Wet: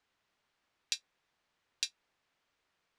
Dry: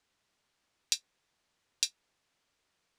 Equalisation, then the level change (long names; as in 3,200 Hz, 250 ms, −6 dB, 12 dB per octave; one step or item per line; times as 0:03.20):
tilt shelving filter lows −4 dB, about 870 Hz
high-shelf EQ 2,600 Hz −8 dB
high-shelf EQ 6,500 Hz −9.5 dB
+1.0 dB